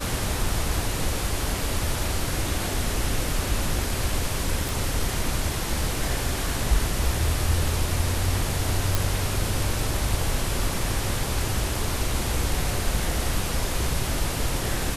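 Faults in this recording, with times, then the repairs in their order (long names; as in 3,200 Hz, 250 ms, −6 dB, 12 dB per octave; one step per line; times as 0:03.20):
0:04.69: click
0:08.95: click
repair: click removal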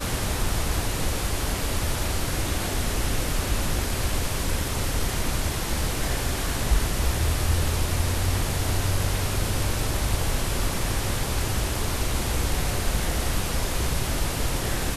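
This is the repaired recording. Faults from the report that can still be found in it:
none of them is left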